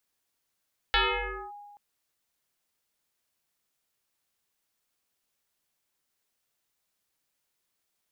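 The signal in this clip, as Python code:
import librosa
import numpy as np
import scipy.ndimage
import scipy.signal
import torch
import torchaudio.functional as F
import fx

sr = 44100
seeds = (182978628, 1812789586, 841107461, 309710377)

y = fx.fm2(sr, length_s=0.83, level_db=-19, carrier_hz=821.0, ratio=0.53, index=7.0, index_s=0.58, decay_s=1.6, shape='linear')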